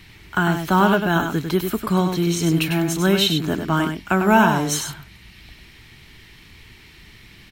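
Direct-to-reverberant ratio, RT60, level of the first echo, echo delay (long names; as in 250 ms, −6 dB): no reverb audible, no reverb audible, −6.5 dB, 99 ms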